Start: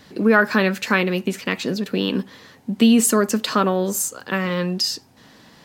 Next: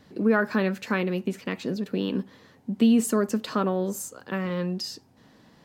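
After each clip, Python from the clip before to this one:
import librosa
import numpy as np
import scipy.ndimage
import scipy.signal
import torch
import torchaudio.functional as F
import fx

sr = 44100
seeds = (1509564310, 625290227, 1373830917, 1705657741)

y = fx.tilt_shelf(x, sr, db=4.0, hz=1100.0)
y = y * librosa.db_to_amplitude(-8.5)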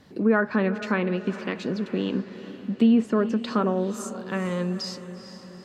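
y = fx.env_lowpass_down(x, sr, base_hz=2500.0, full_db=-20.5)
y = fx.echo_diffused(y, sr, ms=452, feedback_pct=53, wet_db=-13.0)
y = y * librosa.db_to_amplitude(1.0)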